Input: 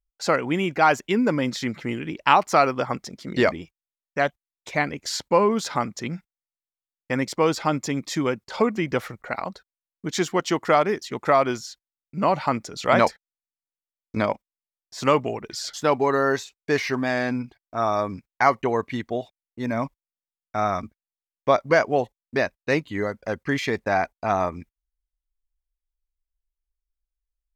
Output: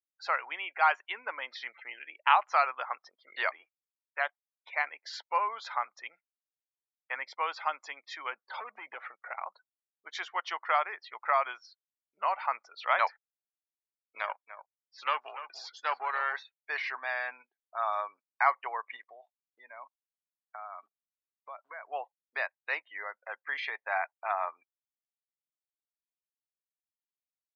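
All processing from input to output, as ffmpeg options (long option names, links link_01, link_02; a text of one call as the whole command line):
ffmpeg -i in.wav -filter_complex "[0:a]asettb=1/sr,asplit=3[link_01][link_02][link_03];[link_01]atrim=end=8.324[link_04];[link_02]atrim=start=8.32:end=9.42,asetpts=PTS-STARTPTS,afade=type=in:duration=0.004:curve=qsin,afade=type=out:start_time=1.096:duration=0.004:curve=qsin,acompressor=threshold=-25dB:ratio=5:attack=3.2:release=140:knee=1:detection=peak,lowshelf=frequency=420:gain=10,volume=18.5dB,asoftclip=hard,volume=-18.5dB[link_05];[link_03]atrim=start=9.416[link_06];[link_04][link_05]acrossfade=duration=0.004:curve1=hsin:curve2=qsin[link_07];[link_07][link_06]acrossfade=duration=0.004:curve1=qsin:curve2=hsin,asettb=1/sr,asplit=3[link_08][link_09][link_10];[link_08]atrim=end=14.184[link_11];[link_09]atrim=start=14.18:end=16.34,asetpts=PTS-STARTPTS,afade=type=in:duration=0.004:curve=qsin,afade=type=out:start_time=2.156:duration=0.004:curve=qsin,aeval=exprs='if(lt(val(0),0),0.447*val(0),val(0))':channel_layout=same,highshelf=frequency=4900:gain=7.5,aecho=1:1:292:0.224,atrim=end_sample=95256[link_12];[link_10]atrim=start=16.336[link_13];[link_11][link_12]acrossfade=duration=0.004:curve1=hsin:curve2=qsin[link_14];[link_14][link_13]acrossfade=duration=0.004:curve1=qsin:curve2=hsin,asettb=1/sr,asplit=3[link_15][link_16][link_17];[link_15]atrim=end=18.964[link_18];[link_16]atrim=start=18.96:end=21.87,asetpts=PTS-STARTPTS,afade=type=in:duration=0.004:curve=qsin,afade=type=out:start_time=2.906:duration=0.004:curve=qsin,acrusher=bits=9:dc=4:mix=0:aa=0.000001,acompressor=threshold=-31dB:ratio=5:attack=3.2:release=140:knee=1:detection=peak[link_19];[link_17]atrim=start=21.866[link_20];[link_18][link_19]acrossfade=duration=0.004:curve1=hsin:curve2=qsin[link_21];[link_21][link_20]acrossfade=duration=0.004:curve1=qsin:curve2=hsin,lowpass=3300,afftdn=noise_reduction=30:noise_floor=-43,highpass=frequency=820:width=0.5412,highpass=frequency=820:width=1.3066,volume=-4.5dB" out.wav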